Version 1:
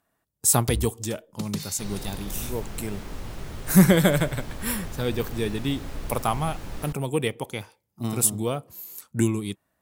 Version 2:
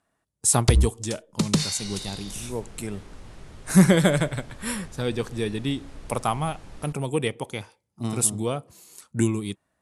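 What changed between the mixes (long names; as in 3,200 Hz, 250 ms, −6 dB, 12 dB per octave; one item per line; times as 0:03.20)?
first sound +10.5 dB
second sound −8.0 dB
master: add Butterworth low-pass 11,000 Hz 48 dB per octave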